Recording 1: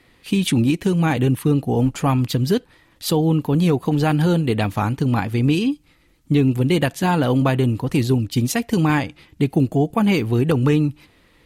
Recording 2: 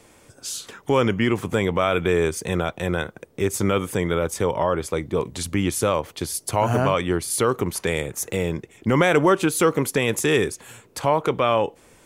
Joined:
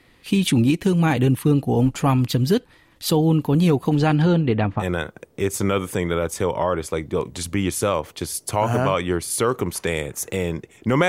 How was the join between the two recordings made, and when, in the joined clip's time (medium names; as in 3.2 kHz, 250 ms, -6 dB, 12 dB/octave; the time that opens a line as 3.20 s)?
recording 1
3.96–4.84 s: low-pass 9 kHz -> 1.3 kHz
4.81 s: go over to recording 2 from 2.81 s, crossfade 0.06 s